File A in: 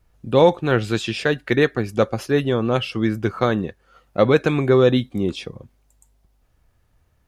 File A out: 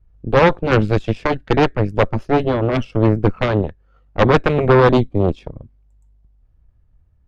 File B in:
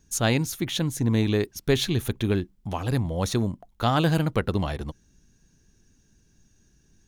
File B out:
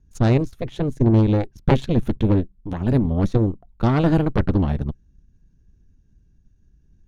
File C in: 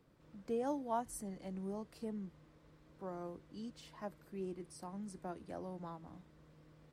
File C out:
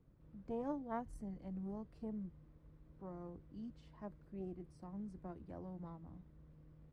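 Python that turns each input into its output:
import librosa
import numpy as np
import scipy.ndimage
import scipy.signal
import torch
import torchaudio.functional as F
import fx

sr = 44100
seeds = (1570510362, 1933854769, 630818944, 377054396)

y = fx.riaa(x, sr, side='playback')
y = fx.cheby_harmonics(y, sr, harmonics=(3, 6), levels_db=(-18, -8), full_scale_db=1.5)
y = y * 10.0 ** (-4.5 / 20.0)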